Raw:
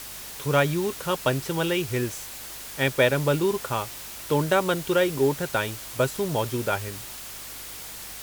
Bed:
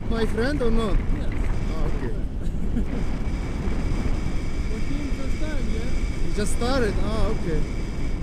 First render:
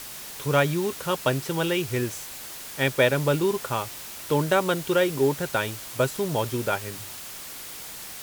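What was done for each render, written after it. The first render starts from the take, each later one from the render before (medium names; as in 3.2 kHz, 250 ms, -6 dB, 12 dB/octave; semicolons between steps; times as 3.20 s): de-hum 50 Hz, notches 2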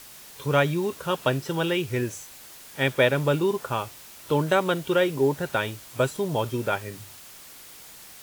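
noise print and reduce 7 dB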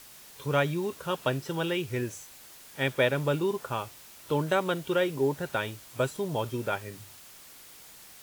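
trim -4.5 dB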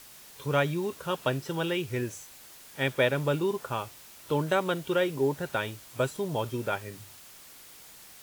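no audible change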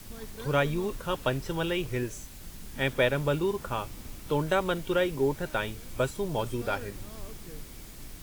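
add bed -19.5 dB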